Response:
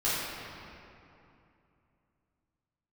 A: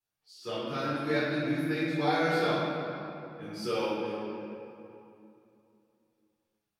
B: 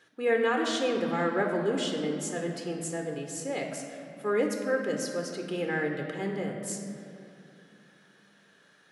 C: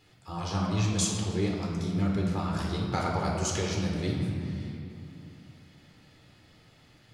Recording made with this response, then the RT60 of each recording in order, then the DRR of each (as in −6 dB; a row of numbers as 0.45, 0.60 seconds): A; 2.8, 2.8, 2.8 seconds; −11.5, 2.0, −2.0 decibels